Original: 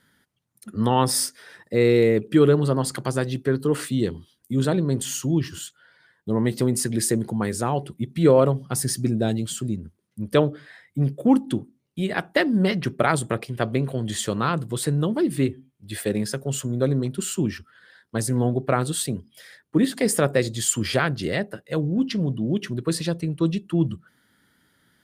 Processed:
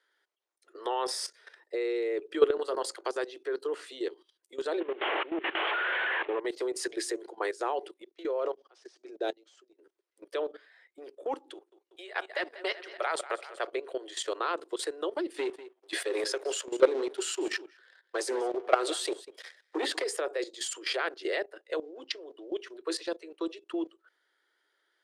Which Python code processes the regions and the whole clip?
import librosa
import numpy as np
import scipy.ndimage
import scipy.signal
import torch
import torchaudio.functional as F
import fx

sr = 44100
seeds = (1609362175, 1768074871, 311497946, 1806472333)

y = fx.chain(x, sr, fx.high_shelf(hz=7800.0, db=10.5),
    fx.hum_notches(base_hz=60, count=9), at=(2.58, 2.98))
y = fx.chain(y, sr, fx.delta_mod(bps=16000, step_db=-37.5),
    fx.env_flatten(amount_pct=70), at=(4.8, 6.4))
y = fx.chain(y, sr, fx.level_steps(step_db=23),
    fx.resample_linear(factor=3), at=(8.04, 9.79))
y = fx.chain(y, sr, fx.highpass(hz=560.0, slope=12),
    fx.echo_feedback(ms=190, feedback_pct=49, wet_db=-13.0), at=(11.53, 13.67))
y = fx.chain(y, sr, fx.peak_eq(hz=150.0, db=-9.0, octaves=0.22),
    fx.leveller(passes=2),
    fx.echo_single(ms=192, db=-19.0), at=(15.34, 20.04))
y = scipy.signal.sosfilt(scipy.signal.butter(12, 340.0, 'highpass', fs=sr, output='sos'), y)
y = fx.level_steps(y, sr, step_db=15)
y = scipy.signal.sosfilt(scipy.signal.butter(2, 6100.0, 'lowpass', fs=sr, output='sos'), y)